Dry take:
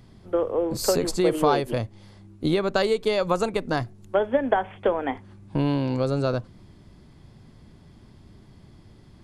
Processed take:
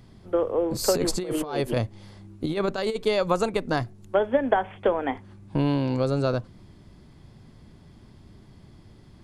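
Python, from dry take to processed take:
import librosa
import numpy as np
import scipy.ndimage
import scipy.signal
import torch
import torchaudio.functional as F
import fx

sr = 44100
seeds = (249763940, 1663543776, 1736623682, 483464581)

y = fx.over_compress(x, sr, threshold_db=-24.0, ratio=-0.5, at=(0.93, 3.02), fade=0.02)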